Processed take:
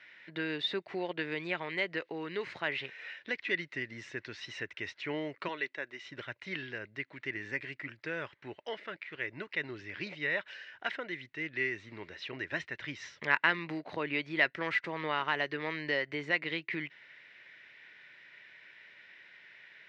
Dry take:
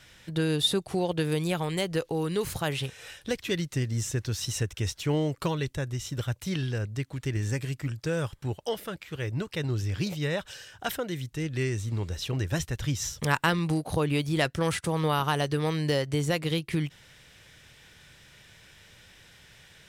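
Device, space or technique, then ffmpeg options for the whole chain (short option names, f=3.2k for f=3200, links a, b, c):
phone earpiece: -filter_complex "[0:a]asettb=1/sr,asplit=3[a][b][c];[a]atrim=end=5.484[d];[b]atrim=start=5.48:end=6.04,asetpts=PTS-STARTPTS,afade=t=in:d=0.004:c=qsin,afade=t=out:st=0.556:d=0.004:c=qsin,highpass=280[e];[c]atrim=start=6.036[f];[d][e]acrossfade=d=0.004:c1=hsin:c2=qsin[g];[g][f]acrossfade=d=0.004:c1=qsin:c2=hsin,highpass=460,equalizer=f=490:t=q:w=4:g=-8,equalizer=f=780:t=q:w=4:g=-9,equalizer=f=1.2k:t=q:w=4:g=-6,equalizer=f=2k:t=q:w=4:g=8,equalizer=f=3.3k:t=q:w=4:g=-7,lowpass=f=3.4k:w=0.5412,lowpass=f=3.4k:w=1.3066"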